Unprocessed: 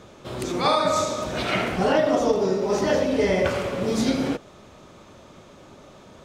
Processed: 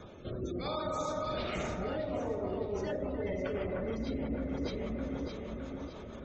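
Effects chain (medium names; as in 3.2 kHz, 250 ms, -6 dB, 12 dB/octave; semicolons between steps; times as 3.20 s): octave divider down 2 oct, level -4 dB; rotary cabinet horn 0.75 Hz, later 6.3 Hz, at 2.38 s; spectral gate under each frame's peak -25 dB strong; echo whose repeats swap between lows and highs 306 ms, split 2 kHz, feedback 64%, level -3 dB; reverse; compression 10:1, threshold -32 dBFS, peak gain reduction 17 dB; reverse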